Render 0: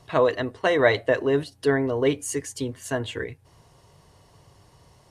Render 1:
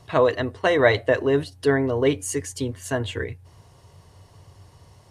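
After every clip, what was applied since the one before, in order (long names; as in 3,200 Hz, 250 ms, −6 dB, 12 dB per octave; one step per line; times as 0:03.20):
parametric band 92 Hz +10.5 dB 0.38 octaves
level +1.5 dB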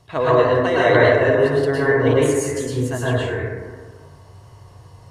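dense smooth reverb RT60 1.6 s, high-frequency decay 0.3×, pre-delay 95 ms, DRR −8 dB
level −3.5 dB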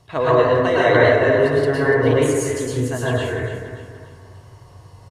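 repeating echo 291 ms, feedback 41%, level −11.5 dB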